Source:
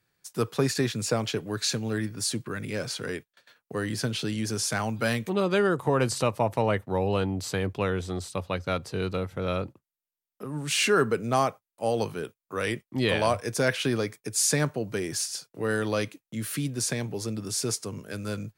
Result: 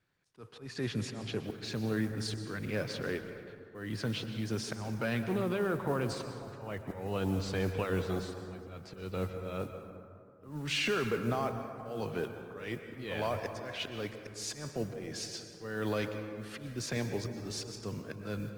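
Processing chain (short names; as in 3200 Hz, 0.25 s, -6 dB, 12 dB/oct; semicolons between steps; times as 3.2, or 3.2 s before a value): LPF 4200 Hz 12 dB/oct; limiter -21 dBFS, peak gain reduction 10 dB; auto swell 0.298 s; modulation noise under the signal 26 dB; plate-style reverb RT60 2.4 s, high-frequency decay 0.4×, pre-delay 0.105 s, DRR 7 dB; gain -2 dB; Opus 24 kbps 48000 Hz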